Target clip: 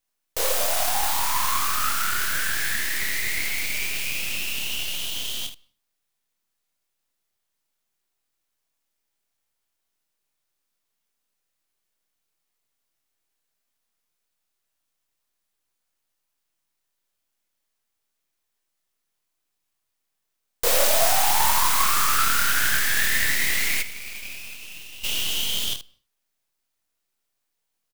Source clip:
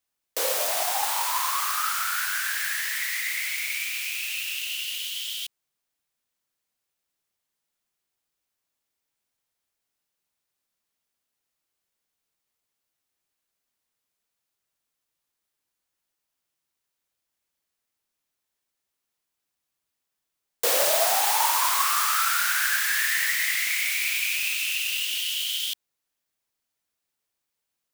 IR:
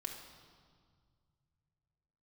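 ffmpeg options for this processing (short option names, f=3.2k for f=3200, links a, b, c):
-filter_complex "[0:a]aeval=exprs='if(lt(val(0),0),0.251*val(0),val(0))':c=same,aecho=1:1:27|77:0.562|0.299,asplit=3[a][b][c];[a]afade=t=out:st=23.81:d=0.02[d];[b]agate=range=-33dB:threshold=-16dB:ratio=3:detection=peak,afade=t=in:st=23.81:d=0.02,afade=t=out:st=25.03:d=0.02[e];[c]afade=t=in:st=25.03:d=0.02[f];[d][e][f]amix=inputs=3:normalize=0,asplit=2[g][h];[1:a]atrim=start_sample=2205,afade=t=out:st=0.3:d=0.01,atrim=end_sample=13671[i];[h][i]afir=irnorm=-1:irlink=0,volume=-17.5dB[j];[g][j]amix=inputs=2:normalize=0,volume=3dB"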